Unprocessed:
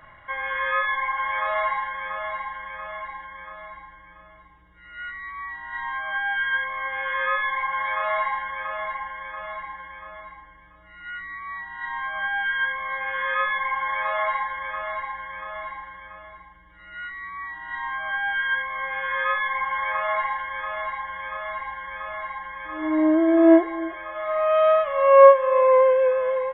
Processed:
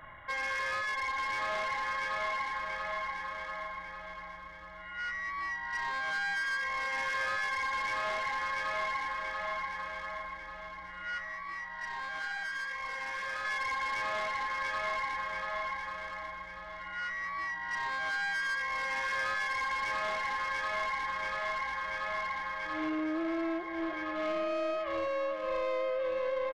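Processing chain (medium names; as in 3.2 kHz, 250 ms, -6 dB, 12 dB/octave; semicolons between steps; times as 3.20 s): dynamic bell 2.6 kHz, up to +5 dB, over -42 dBFS, Q 2; compression 12:1, threshold -25 dBFS, peak gain reduction 19.5 dB; saturation -29 dBFS, distortion -12 dB; 11.18–13.45 s: flange 1.8 Hz, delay 0.8 ms, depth 6.2 ms, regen +70%; feedback delay 1144 ms, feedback 30%, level -8 dB; trim -1 dB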